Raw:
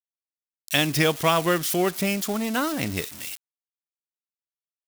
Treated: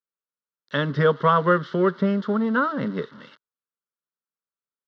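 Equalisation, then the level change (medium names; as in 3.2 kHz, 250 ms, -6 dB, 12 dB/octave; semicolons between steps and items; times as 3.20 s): distance through air 190 m; cabinet simulation 130–3500 Hz, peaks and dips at 130 Hz +5 dB, 350 Hz +7 dB, 1.4 kHz +5 dB; static phaser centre 490 Hz, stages 8; +5.0 dB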